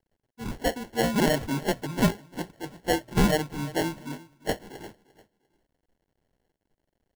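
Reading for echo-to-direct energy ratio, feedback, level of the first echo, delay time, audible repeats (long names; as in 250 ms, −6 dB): −18.5 dB, 28%, −19.0 dB, 348 ms, 2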